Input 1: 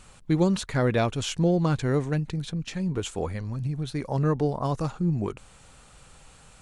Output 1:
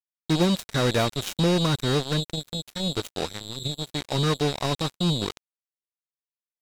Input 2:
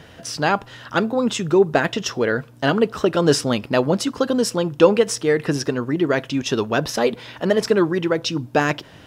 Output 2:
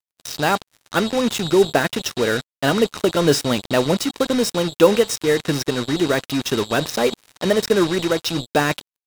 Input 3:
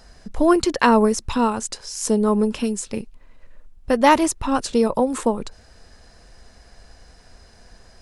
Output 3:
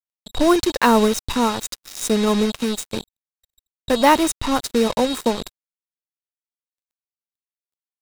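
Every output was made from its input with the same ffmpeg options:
-af "aeval=exprs='val(0)+0.0224*sin(2*PI*3800*n/s)':c=same,acrusher=bits=3:mix=0:aa=0.5"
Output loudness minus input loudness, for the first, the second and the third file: +1.0, +0.5, +0.5 LU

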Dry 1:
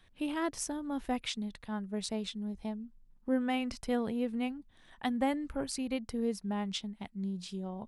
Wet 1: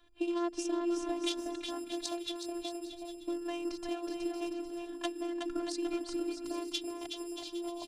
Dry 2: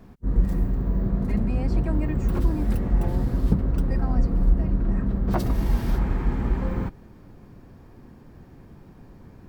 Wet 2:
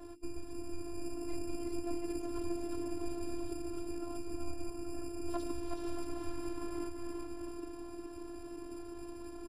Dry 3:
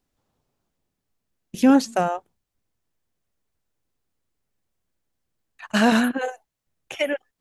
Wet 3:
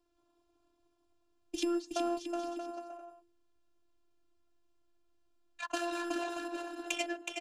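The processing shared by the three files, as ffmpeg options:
-filter_complex "[0:a]bandreject=f=60:t=h:w=6,bandreject=f=120:t=h:w=6,bandreject=f=180:t=h:w=6,bandreject=f=240:t=h:w=6,bandreject=f=300:t=h:w=6,bandreject=f=360:t=h:w=6,acompressor=threshold=-36dB:ratio=6,asplit=2[a][b];[b]aecho=0:1:370|629|810.3|937.2|1026:0.631|0.398|0.251|0.158|0.1[c];[a][c]amix=inputs=2:normalize=0,adynamicsmooth=sensitivity=5:basefreq=2.1k,lowshelf=f=130:g=-6.5,acrossover=split=180[d][e];[d]acrusher=samples=18:mix=1:aa=0.000001[f];[f][e]amix=inputs=2:normalize=0,lowpass=f=10k:w=0.5412,lowpass=f=10k:w=1.3066,afftfilt=real='hypot(re,im)*cos(PI*b)':imag='0':win_size=512:overlap=0.75,crystalizer=i=4.5:c=0,equalizer=f=200:t=o:w=0.33:g=-10,equalizer=f=315:t=o:w=0.33:g=8,equalizer=f=2k:t=o:w=0.33:g=-12,volume=5dB"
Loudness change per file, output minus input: -1.5, -16.5, -15.5 LU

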